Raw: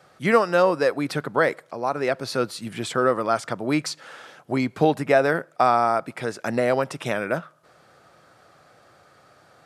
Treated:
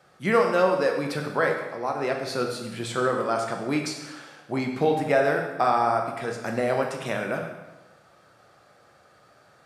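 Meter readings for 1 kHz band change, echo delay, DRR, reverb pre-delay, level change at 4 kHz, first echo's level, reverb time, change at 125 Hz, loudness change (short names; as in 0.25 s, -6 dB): -2.0 dB, none, 1.5 dB, 4 ms, -2.5 dB, none, 1.1 s, -2.5 dB, -2.5 dB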